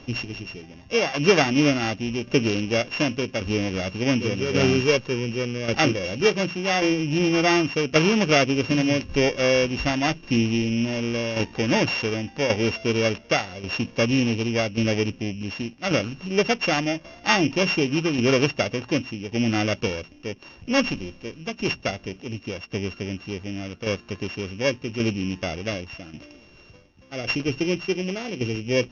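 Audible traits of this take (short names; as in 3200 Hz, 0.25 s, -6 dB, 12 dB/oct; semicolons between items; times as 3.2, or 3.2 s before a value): a buzz of ramps at a fixed pitch in blocks of 16 samples; tremolo saw down 0.88 Hz, depth 60%; MP2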